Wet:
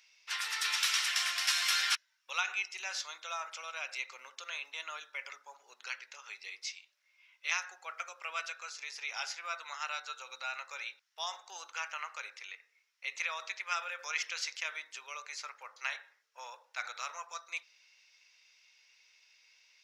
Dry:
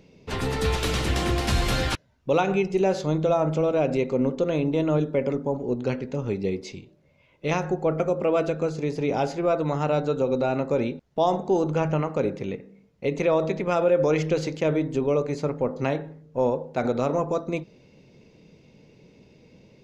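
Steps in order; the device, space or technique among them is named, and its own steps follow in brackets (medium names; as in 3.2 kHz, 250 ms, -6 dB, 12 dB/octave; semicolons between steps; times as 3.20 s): headphones lying on a table (high-pass 1.4 kHz 24 dB/octave; peaking EQ 5.5 kHz +8 dB 0.2 oct)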